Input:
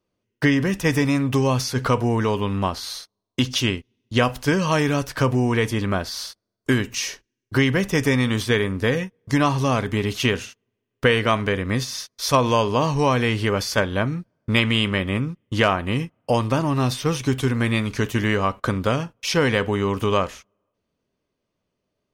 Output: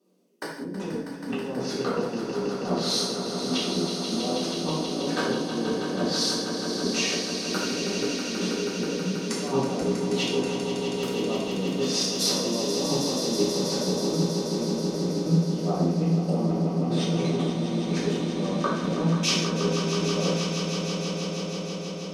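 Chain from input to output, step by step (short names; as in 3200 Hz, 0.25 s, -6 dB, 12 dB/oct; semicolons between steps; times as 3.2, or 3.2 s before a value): elliptic high-pass 180 Hz, stop band 40 dB; treble ducked by the level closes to 910 Hz, closed at -19 dBFS; bell 1800 Hz -15 dB 2.2 oct; limiter -22.5 dBFS, peak gain reduction 10.5 dB; negative-ratio compressor -36 dBFS, ratio -0.5; on a send: swelling echo 0.161 s, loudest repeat 5, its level -9.5 dB; on the sum: non-linear reverb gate 0.23 s falling, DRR -7 dB; gain +1.5 dB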